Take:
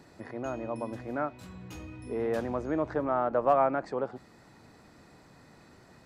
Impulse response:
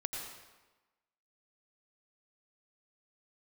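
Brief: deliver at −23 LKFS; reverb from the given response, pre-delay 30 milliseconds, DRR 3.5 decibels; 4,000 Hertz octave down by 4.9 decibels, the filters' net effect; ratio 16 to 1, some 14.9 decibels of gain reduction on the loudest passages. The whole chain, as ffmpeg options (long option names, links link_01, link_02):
-filter_complex "[0:a]equalizer=frequency=4000:width_type=o:gain=-6.5,acompressor=threshold=-34dB:ratio=16,asplit=2[link_01][link_02];[1:a]atrim=start_sample=2205,adelay=30[link_03];[link_02][link_03]afir=irnorm=-1:irlink=0,volume=-5dB[link_04];[link_01][link_04]amix=inputs=2:normalize=0,volume=16dB"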